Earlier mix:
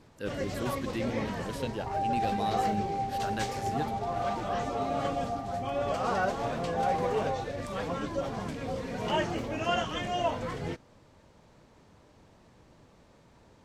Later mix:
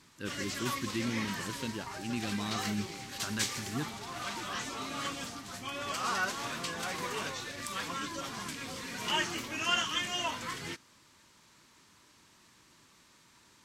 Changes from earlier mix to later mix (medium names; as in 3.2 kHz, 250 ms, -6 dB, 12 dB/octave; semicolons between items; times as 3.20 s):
first sound: add tilt EQ +3.5 dB/octave; second sound -10.0 dB; master: add high-order bell 600 Hz -10 dB 1.1 oct